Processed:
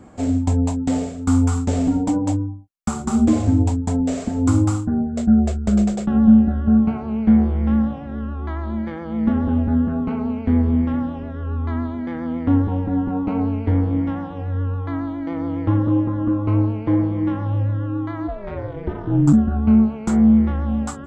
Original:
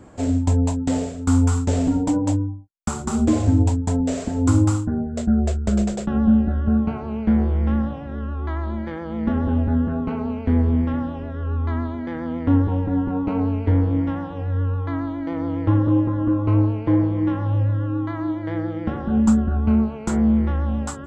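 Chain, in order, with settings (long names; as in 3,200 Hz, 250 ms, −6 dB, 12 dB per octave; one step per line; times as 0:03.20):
hollow resonant body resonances 220/760/1,200/2,200 Hz, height 6 dB
0:18.27–0:19.32: ring modulation 390 Hz → 71 Hz
level −1 dB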